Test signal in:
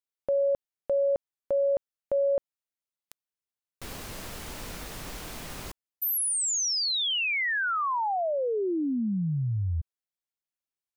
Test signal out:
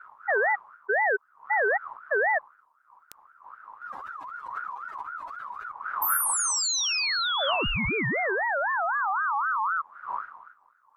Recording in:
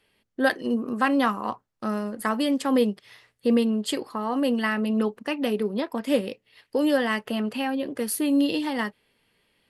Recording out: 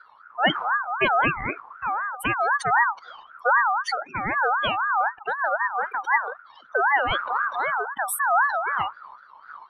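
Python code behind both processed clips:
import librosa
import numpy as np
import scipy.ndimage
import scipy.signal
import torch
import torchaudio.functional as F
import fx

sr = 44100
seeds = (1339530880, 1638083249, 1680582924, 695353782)

y = fx.spec_expand(x, sr, power=2.9)
y = fx.dmg_wind(y, sr, seeds[0], corner_hz=110.0, level_db=-42.0)
y = fx.ring_lfo(y, sr, carrier_hz=1200.0, swing_pct=20, hz=3.9)
y = y * 10.0 ** (4.5 / 20.0)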